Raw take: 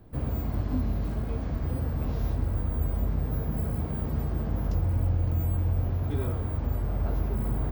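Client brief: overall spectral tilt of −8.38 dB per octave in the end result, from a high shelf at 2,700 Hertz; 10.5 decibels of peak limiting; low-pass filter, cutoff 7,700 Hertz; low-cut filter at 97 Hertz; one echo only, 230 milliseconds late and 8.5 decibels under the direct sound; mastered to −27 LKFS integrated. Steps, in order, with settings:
high-pass filter 97 Hz
low-pass filter 7,700 Hz
high-shelf EQ 2,700 Hz −4 dB
brickwall limiter −30.5 dBFS
single-tap delay 230 ms −8.5 dB
level +11 dB

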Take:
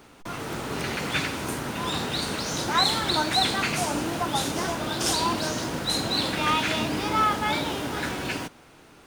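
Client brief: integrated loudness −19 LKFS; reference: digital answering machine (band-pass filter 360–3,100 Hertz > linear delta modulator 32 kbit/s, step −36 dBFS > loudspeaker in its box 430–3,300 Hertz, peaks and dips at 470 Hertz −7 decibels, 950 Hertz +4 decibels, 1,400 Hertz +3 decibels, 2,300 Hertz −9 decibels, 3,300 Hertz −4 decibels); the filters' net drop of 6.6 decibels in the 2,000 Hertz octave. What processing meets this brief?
band-pass filter 360–3,100 Hz
parametric band 2,000 Hz −7 dB
linear delta modulator 32 kbit/s, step −36 dBFS
loudspeaker in its box 430–3,300 Hz, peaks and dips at 470 Hz −7 dB, 950 Hz +4 dB, 1,400 Hz +3 dB, 2,300 Hz −9 dB, 3,300 Hz −4 dB
level +12 dB

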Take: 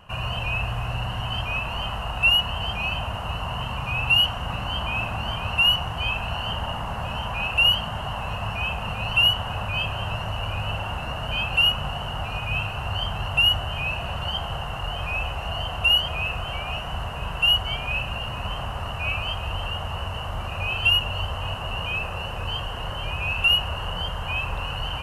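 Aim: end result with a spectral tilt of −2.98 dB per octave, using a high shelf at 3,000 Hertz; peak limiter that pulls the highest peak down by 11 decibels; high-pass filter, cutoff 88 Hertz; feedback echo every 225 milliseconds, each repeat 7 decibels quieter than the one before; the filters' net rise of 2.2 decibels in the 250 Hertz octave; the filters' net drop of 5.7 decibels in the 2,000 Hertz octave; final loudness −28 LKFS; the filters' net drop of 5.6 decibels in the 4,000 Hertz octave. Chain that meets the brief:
high-pass filter 88 Hz
parametric band 250 Hz +4 dB
parametric band 2,000 Hz −5.5 dB
high-shelf EQ 3,000 Hz −3 dB
parametric band 4,000 Hz −3 dB
brickwall limiter −23.5 dBFS
repeating echo 225 ms, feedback 45%, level −7 dB
level +3 dB

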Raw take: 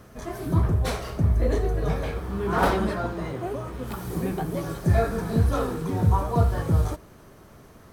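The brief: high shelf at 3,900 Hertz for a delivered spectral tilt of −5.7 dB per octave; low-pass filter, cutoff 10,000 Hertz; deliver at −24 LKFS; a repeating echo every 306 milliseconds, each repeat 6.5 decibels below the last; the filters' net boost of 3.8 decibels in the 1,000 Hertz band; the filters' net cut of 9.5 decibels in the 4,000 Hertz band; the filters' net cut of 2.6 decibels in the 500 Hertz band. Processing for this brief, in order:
low-pass filter 10,000 Hz
parametric band 500 Hz −5.5 dB
parametric band 1,000 Hz +7.5 dB
high-shelf EQ 3,900 Hz −6 dB
parametric band 4,000 Hz −9 dB
repeating echo 306 ms, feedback 47%, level −6.5 dB
level +0.5 dB

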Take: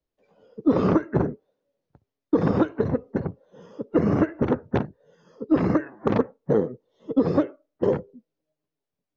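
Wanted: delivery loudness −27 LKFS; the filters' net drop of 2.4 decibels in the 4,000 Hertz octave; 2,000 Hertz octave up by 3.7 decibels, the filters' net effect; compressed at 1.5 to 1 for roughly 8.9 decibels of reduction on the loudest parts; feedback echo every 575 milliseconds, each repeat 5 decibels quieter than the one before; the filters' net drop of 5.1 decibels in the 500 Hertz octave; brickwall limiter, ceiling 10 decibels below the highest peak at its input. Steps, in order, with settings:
parametric band 500 Hz −6.5 dB
parametric band 2,000 Hz +6.5 dB
parametric band 4,000 Hz −6 dB
downward compressor 1.5 to 1, threshold −43 dBFS
brickwall limiter −27 dBFS
repeating echo 575 ms, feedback 56%, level −5 dB
level +11.5 dB

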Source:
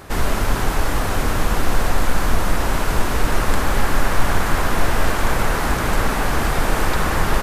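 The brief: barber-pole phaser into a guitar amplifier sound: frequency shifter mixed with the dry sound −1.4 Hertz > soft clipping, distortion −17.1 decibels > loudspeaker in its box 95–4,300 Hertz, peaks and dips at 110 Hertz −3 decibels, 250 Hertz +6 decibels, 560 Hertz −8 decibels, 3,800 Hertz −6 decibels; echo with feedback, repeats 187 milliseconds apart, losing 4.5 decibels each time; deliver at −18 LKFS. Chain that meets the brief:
repeating echo 187 ms, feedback 60%, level −4.5 dB
frequency shifter mixed with the dry sound −1.4 Hz
soft clipping −11 dBFS
loudspeaker in its box 95–4,300 Hz, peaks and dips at 110 Hz −3 dB, 250 Hz +6 dB, 560 Hz −8 dB, 3,800 Hz −6 dB
level +8 dB

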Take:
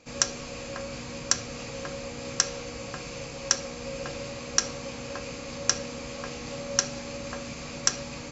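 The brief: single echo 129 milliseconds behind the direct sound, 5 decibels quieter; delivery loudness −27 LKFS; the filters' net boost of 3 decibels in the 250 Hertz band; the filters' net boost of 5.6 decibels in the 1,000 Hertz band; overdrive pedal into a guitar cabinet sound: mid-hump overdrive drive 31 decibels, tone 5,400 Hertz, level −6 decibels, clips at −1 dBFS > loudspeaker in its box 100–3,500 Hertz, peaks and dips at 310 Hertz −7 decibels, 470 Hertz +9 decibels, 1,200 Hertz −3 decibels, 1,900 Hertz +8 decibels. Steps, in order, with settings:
parametric band 250 Hz +5 dB
parametric band 1,000 Hz +8 dB
single-tap delay 129 ms −5 dB
mid-hump overdrive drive 31 dB, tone 5,400 Hz, level −6 dB, clips at −1 dBFS
loudspeaker in its box 100–3,500 Hz, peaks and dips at 310 Hz −7 dB, 470 Hz +9 dB, 1,200 Hz −3 dB, 1,900 Hz +8 dB
level −15 dB

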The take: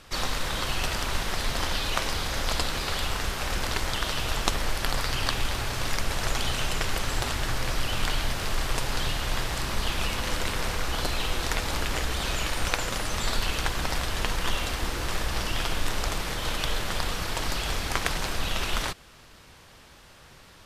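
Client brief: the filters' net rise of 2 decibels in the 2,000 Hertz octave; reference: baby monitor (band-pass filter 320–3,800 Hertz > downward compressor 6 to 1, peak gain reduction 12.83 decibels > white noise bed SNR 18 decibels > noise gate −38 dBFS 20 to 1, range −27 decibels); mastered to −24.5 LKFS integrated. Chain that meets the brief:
band-pass filter 320–3,800 Hz
parametric band 2,000 Hz +3 dB
downward compressor 6 to 1, threshold −33 dBFS
white noise bed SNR 18 dB
noise gate −38 dBFS 20 to 1, range −27 dB
level +11 dB

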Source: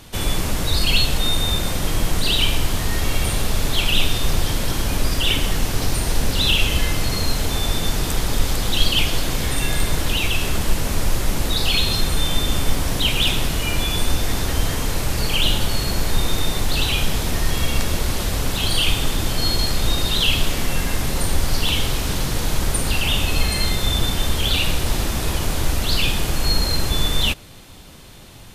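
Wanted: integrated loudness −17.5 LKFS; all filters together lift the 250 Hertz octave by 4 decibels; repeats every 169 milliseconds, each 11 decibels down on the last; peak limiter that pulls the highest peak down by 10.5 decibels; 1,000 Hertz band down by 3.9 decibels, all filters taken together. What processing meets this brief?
parametric band 250 Hz +5.5 dB
parametric band 1,000 Hz −5.5 dB
brickwall limiter −12 dBFS
repeating echo 169 ms, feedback 28%, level −11 dB
level +5.5 dB

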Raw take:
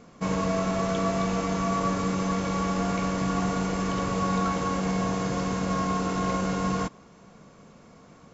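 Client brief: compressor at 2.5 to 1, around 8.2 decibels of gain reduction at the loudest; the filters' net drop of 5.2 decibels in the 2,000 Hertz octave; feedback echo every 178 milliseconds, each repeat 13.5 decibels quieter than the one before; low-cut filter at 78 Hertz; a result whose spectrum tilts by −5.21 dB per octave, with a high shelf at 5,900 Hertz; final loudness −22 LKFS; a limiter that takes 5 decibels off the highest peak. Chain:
high-pass filter 78 Hz
parametric band 2,000 Hz −8 dB
high-shelf EQ 5,900 Hz +7 dB
downward compressor 2.5 to 1, threshold −36 dBFS
brickwall limiter −29 dBFS
repeating echo 178 ms, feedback 21%, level −13.5 dB
level +16.5 dB

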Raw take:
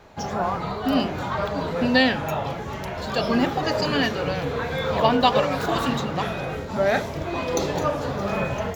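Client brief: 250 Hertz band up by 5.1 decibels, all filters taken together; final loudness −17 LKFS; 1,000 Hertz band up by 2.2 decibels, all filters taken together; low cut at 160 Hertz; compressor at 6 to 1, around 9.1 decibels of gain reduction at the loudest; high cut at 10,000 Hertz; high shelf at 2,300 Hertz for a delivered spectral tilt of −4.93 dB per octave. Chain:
high-pass filter 160 Hz
low-pass filter 10,000 Hz
parametric band 250 Hz +6.5 dB
parametric band 1,000 Hz +3.5 dB
high-shelf EQ 2,300 Hz −6 dB
downward compressor 6 to 1, threshold −21 dBFS
level +9 dB

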